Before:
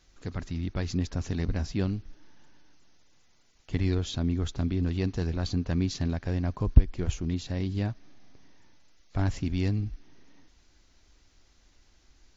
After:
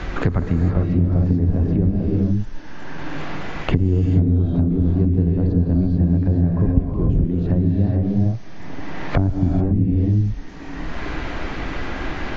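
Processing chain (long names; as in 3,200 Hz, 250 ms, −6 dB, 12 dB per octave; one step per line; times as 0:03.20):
treble cut that deepens with the level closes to 500 Hz, closed at −26 dBFS
reverb whose tail is shaped and stops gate 470 ms rising, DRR −1.5 dB
multiband upward and downward compressor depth 100%
level +8 dB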